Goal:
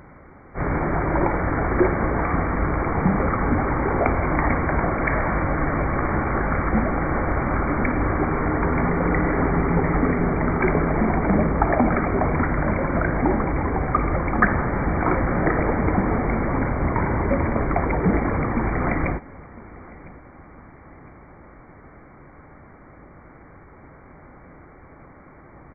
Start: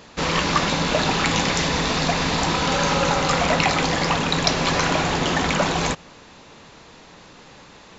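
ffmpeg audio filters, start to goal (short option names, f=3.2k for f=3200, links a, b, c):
-af "aecho=1:1:312|624|936:0.0841|0.032|0.0121,asetrate=13671,aresample=44100"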